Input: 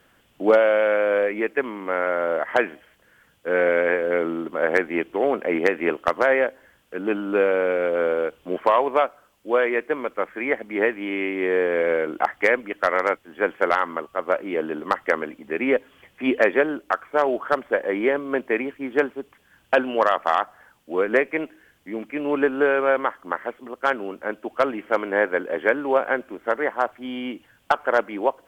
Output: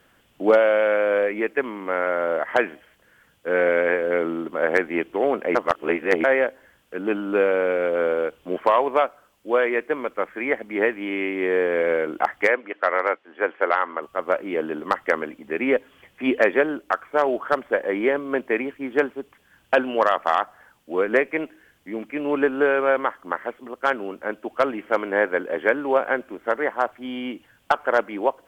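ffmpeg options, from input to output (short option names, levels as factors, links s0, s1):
-filter_complex "[0:a]asplit=3[s0][s1][s2];[s0]afade=t=out:st=12.47:d=0.02[s3];[s1]highpass=350,lowpass=3000,afade=t=in:st=12.47:d=0.02,afade=t=out:st=14.01:d=0.02[s4];[s2]afade=t=in:st=14.01:d=0.02[s5];[s3][s4][s5]amix=inputs=3:normalize=0,asplit=3[s6][s7][s8];[s6]atrim=end=5.552[s9];[s7]atrim=start=5.548:end=6.242,asetpts=PTS-STARTPTS,areverse[s10];[s8]atrim=start=6.238[s11];[s9][s10]acrossfade=d=0.004:c1=hsin:c2=hsin[s12];[s12][s11]acrossfade=d=0.004:c1=hsin:c2=hsin"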